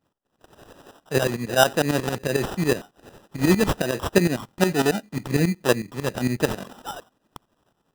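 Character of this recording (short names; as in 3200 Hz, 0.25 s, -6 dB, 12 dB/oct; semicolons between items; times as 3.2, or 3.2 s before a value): phasing stages 2, 1.3 Hz, lowest notch 680–2300 Hz; tremolo saw up 11 Hz, depth 80%; aliases and images of a low sample rate 2200 Hz, jitter 0%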